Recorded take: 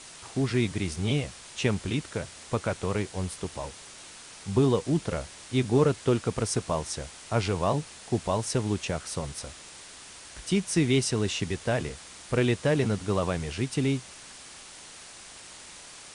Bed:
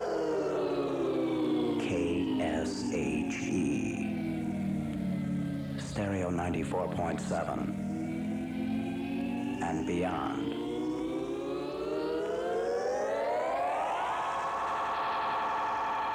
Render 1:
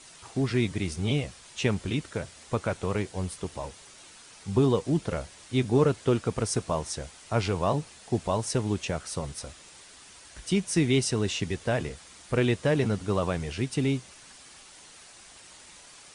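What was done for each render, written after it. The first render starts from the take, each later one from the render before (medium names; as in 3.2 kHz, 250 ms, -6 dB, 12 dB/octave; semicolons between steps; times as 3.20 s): noise reduction 6 dB, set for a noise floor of -47 dBFS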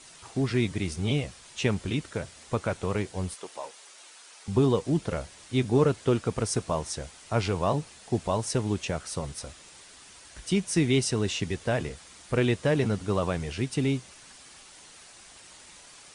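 3.34–4.48 s: high-pass 490 Hz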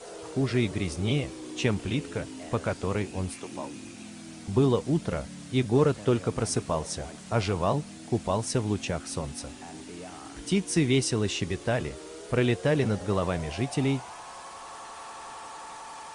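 add bed -11 dB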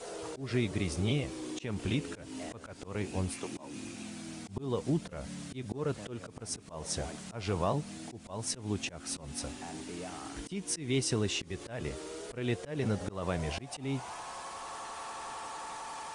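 compression 2:1, threshold -29 dBFS, peak gain reduction 7 dB; slow attack 213 ms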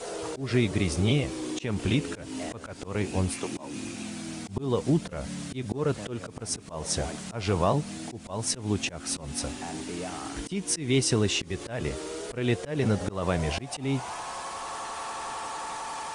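trim +6.5 dB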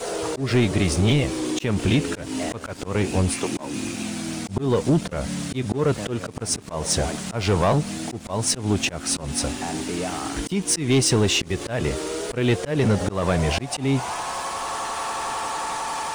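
waveshaping leveller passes 2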